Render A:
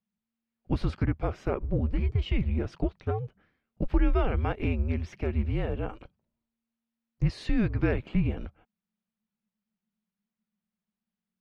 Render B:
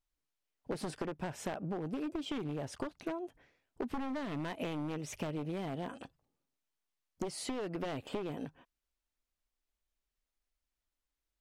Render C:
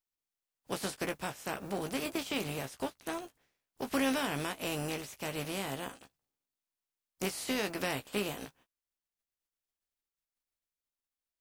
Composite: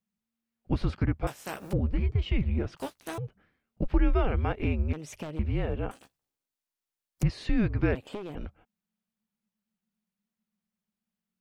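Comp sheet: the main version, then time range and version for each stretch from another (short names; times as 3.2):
A
1.27–1.73 from C
2.77–3.18 from C
4.93–5.39 from B
5.91–7.23 from C
7.95–8.35 from B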